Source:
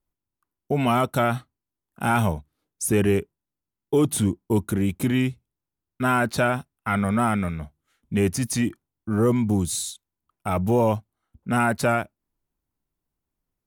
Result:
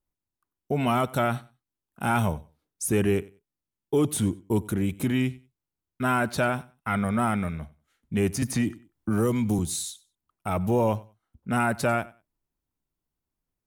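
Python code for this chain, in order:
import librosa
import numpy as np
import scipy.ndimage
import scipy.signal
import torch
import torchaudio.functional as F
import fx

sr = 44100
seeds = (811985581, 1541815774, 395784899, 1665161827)

y = fx.echo_feedback(x, sr, ms=94, feedback_pct=20, wet_db=-21.5)
y = fx.band_squash(y, sr, depth_pct=70, at=(8.42, 9.59))
y = y * 10.0 ** (-3.0 / 20.0)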